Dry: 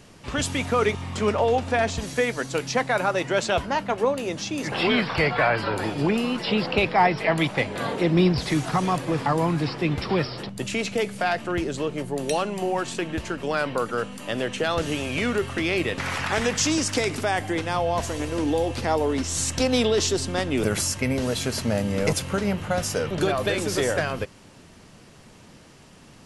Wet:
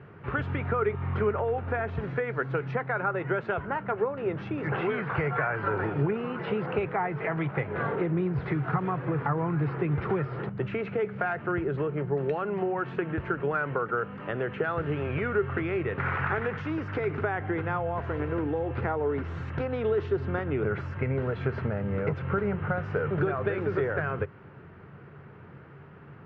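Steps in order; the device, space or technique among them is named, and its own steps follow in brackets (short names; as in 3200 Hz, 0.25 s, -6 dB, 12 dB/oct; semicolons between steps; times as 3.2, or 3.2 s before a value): bass amplifier (compressor, threshold -26 dBFS, peak gain reduction 11.5 dB; speaker cabinet 66–2100 Hz, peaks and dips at 92 Hz +6 dB, 140 Hz +9 dB, 250 Hz -6 dB, 410 Hz +7 dB, 600 Hz -3 dB, 1400 Hz +8 dB); gain -1 dB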